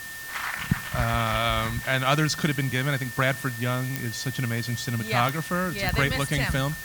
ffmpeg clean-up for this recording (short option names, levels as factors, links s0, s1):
-af "adeclick=t=4,bandreject=f=1800:w=30,afwtdn=0.0089"